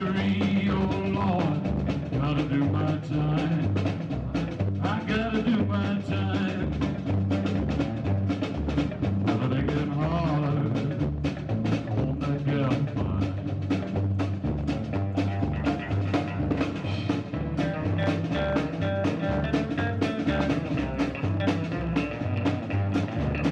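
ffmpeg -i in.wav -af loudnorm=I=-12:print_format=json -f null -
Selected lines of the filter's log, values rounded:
"input_i" : "-27.4",
"input_tp" : "-11.3",
"input_lra" : "1.6",
"input_thresh" : "-37.4",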